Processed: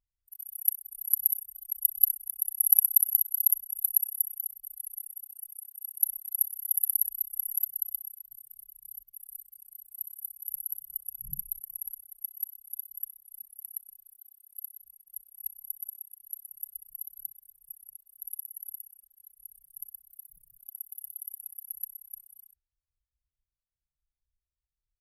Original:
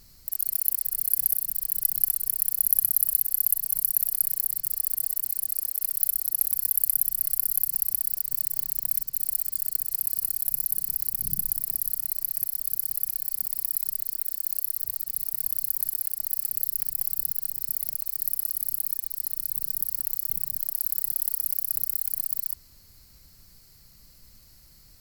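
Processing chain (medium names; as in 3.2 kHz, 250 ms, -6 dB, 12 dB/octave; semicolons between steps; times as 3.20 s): Chebyshev shaper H 8 -40 dB, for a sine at -1 dBFS; resampled via 32 kHz; spectral contrast expander 2.5:1; trim +1 dB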